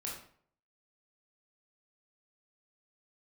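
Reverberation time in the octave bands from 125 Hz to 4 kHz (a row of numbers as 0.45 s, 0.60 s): 0.60 s, 0.55 s, 0.60 s, 0.55 s, 0.45 s, 0.40 s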